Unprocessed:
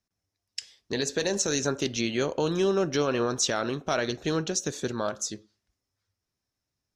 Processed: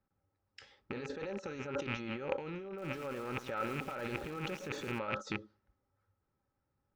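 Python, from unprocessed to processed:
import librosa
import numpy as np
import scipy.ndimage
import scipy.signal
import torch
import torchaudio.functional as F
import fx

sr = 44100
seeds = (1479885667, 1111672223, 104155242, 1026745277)

y = fx.rattle_buzz(x, sr, strikes_db=-42.0, level_db=-21.0)
y = fx.over_compress(y, sr, threshold_db=-36.0, ratio=-1.0)
y = fx.high_shelf(y, sr, hz=5600.0, db=5.0)
y = fx.small_body(y, sr, hz=(570.0, 810.0, 1300.0), ring_ms=55, db=14)
y = fx.env_lowpass(y, sr, base_hz=1300.0, full_db=-11.0)
y = fx.peak_eq(y, sr, hz=650.0, db=-11.5, octaves=0.44)
y = fx.echo_crushed(y, sr, ms=112, feedback_pct=35, bits=7, wet_db=-9.0, at=(2.65, 4.99))
y = y * 10.0 ** (-3.5 / 20.0)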